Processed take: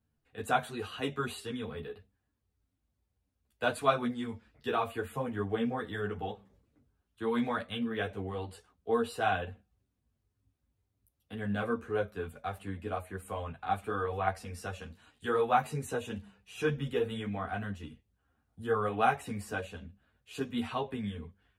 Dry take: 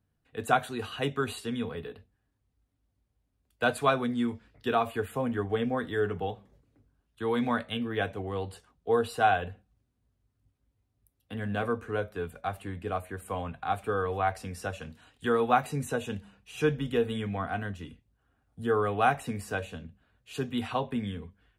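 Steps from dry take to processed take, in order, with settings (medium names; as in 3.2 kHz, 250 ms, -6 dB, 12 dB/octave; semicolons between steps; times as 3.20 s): three-phase chorus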